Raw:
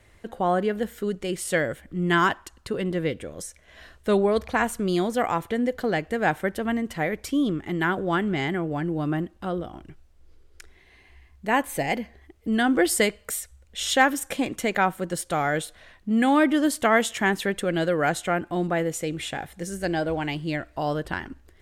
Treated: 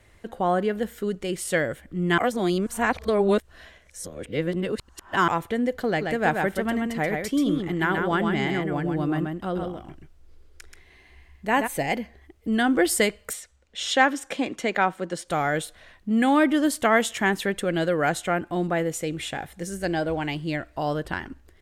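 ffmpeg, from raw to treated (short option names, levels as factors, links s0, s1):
-filter_complex "[0:a]asplit=3[s0][s1][s2];[s0]afade=t=out:st=6:d=0.02[s3];[s1]aecho=1:1:131:0.596,afade=t=in:st=6:d=0.02,afade=t=out:st=11.66:d=0.02[s4];[s2]afade=t=in:st=11.66:d=0.02[s5];[s3][s4][s5]amix=inputs=3:normalize=0,asettb=1/sr,asplit=3[s6][s7][s8];[s6]atrim=end=13.334[s9];[s7]atrim=start=13.33:end=15.28,asetpts=PTS-STARTPTS,afade=t=in:d=0.004:c=qsin,afade=t=out:st=1.946:d=0.004:c=qsin,acrossover=split=170 7500:gain=0.251 1 0.141[s10][s11][s12];[s10][s11][s12]amix=inputs=3:normalize=0[s13];[s8]atrim=start=15.276[s14];[s9][s13]acrossfade=d=0.004:c1=hsin:c2=qsin[s15];[s15][s14]acrossfade=d=0.004:c1=qsin:c2=hsin,asplit=3[s16][s17][s18];[s16]atrim=end=2.182[s19];[s17]atrim=start=2.178:end=5.282,asetpts=PTS-STARTPTS,areverse[s20];[s18]atrim=start=5.278[s21];[s19][s20]acrossfade=d=0.004:c1=hsin:c2=hsin[s22];[s22][s21]acrossfade=d=0.004:c1=hsin:c2=hsin"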